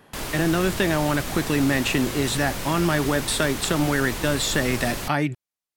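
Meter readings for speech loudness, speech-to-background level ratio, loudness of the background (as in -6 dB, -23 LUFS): -23.5 LUFS, 7.0 dB, -30.5 LUFS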